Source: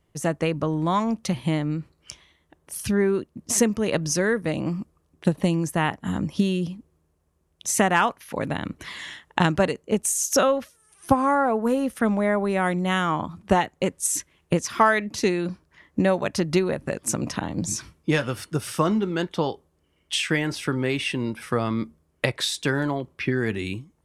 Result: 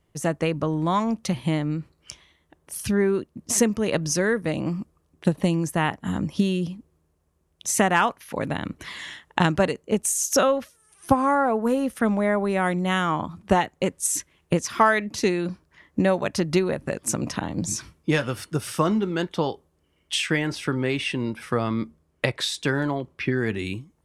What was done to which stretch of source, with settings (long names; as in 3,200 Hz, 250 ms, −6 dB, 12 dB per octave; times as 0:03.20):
0:20.26–0:23.59: high-shelf EQ 9,700 Hz −6.5 dB